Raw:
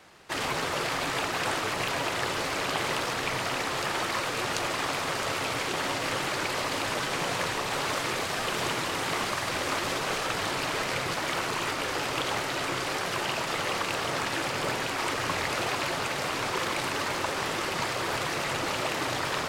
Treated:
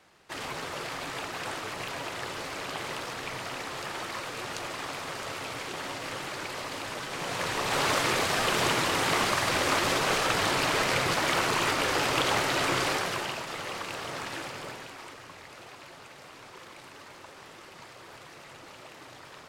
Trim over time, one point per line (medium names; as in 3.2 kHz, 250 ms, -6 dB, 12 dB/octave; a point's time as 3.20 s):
7.08 s -6.5 dB
7.82 s +3.5 dB
12.86 s +3.5 dB
13.45 s -6.5 dB
14.36 s -6.5 dB
15.30 s -18 dB